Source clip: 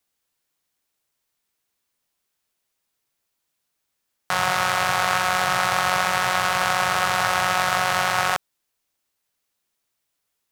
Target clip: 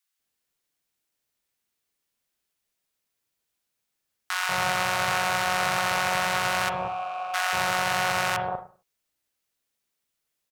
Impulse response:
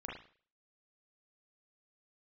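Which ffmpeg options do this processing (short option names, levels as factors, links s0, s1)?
-filter_complex "[0:a]asettb=1/sr,asplit=3[s0][s1][s2];[s0]atrim=end=6.694[s3];[s1]atrim=start=6.69:end=7.34,asetpts=PTS-STARTPTS,afade=t=in:d=0.004:c=qsin,afade=t=out:st=0.646:d=0.004:c=qsin,asplit=3[s4][s5][s6];[s4]bandpass=f=730:t=q:w=8,volume=1[s7];[s5]bandpass=f=1090:t=q:w=8,volume=0.501[s8];[s6]bandpass=f=2440:t=q:w=8,volume=0.355[s9];[s7][s8][s9]amix=inputs=3:normalize=0[s10];[s2]atrim=start=7.336[s11];[s3][s10]acrossfade=d=0.004:c1=hsin:c2=qsin[s12];[s12][s11]acrossfade=d=0.004:c1=qsin:c2=hsin,acrossover=split=980[s13][s14];[s13]adelay=190[s15];[s15][s14]amix=inputs=2:normalize=0,asplit=2[s16][s17];[1:a]atrim=start_sample=2205,afade=t=out:st=0.32:d=0.01,atrim=end_sample=14553[s18];[s17][s18]afir=irnorm=-1:irlink=0,volume=0.708[s19];[s16][s19]amix=inputs=2:normalize=0,volume=0.501"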